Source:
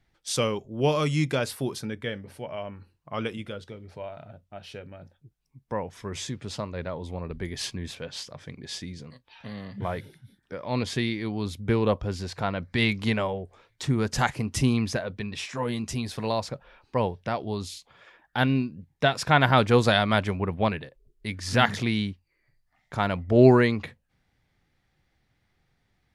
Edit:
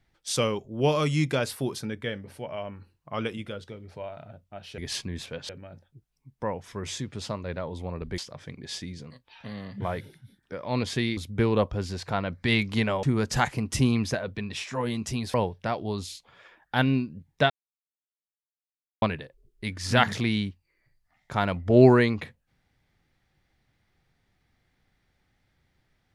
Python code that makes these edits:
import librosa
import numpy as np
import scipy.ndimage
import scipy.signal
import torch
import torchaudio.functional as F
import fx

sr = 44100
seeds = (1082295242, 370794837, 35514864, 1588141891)

y = fx.edit(x, sr, fx.move(start_s=7.47, length_s=0.71, to_s=4.78),
    fx.cut(start_s=11.17, length_s=0.3),
    fx.cut(start_s=13.33, length_s=0.52),
    fx.cut(start_s=16.16, length_s=0.8),
    fx.silence(start_s=19.12, length_s=1.52), tone=tone)